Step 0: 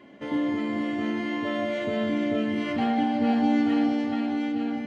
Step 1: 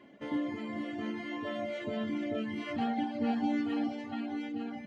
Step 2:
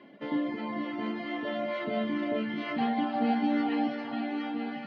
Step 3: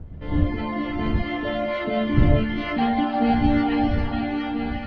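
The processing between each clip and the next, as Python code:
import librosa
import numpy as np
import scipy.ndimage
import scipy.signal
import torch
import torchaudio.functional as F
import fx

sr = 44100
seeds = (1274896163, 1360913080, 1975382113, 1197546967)

y1 = fx.dereverb_blind(x, sr, rt60_s=1.1)
y1 = F.gain(torch.from_numpy(y1), -5.5).numpy()
y2 = scipy.signal.sosfilt(scipy.signal.ellip(3, 1.0, 40, [150.0, 4600.0], 'bandpass', fs=sr, output='sos'), y1)
y2 = fx.echo_stepped(y2, sr, ms=350, hz=950.0, octaves=0.7, feedback_pct=70, wet_db=-1.0)
y2 = F.gain(torch.from_numpy(y2), 4.0).numpy()
y3 = fx.fade_in_head(y2, sr, length_s=0.61)
y3 = fx.dmg_wind(y3, sr, seeds[0], corner_hz=100.0, level_db=-33.0)
y3 = F.gain(torch.from_numpy(y3), 7.0).numpy()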